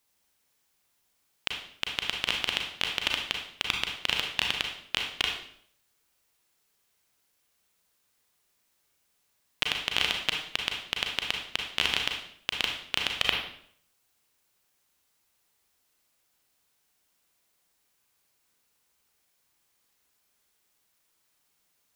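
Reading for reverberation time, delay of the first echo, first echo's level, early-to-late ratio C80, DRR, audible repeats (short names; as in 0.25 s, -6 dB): 0.65 s, none, none, 8.0 dB, 1.5 dB, none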